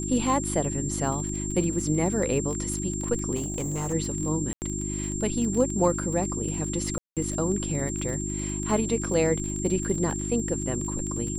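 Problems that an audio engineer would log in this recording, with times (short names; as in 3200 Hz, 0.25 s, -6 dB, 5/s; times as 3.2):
crackle 22/s -30 dBFS
hum 50 Hz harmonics 7 -32 dBFS
tone 7400 Hz -33 dBFS
3.35–3.94 clipped -25.5 dBFS
4.53–4.62 gap 89 ms
6.98–7.17 gap 0.187 s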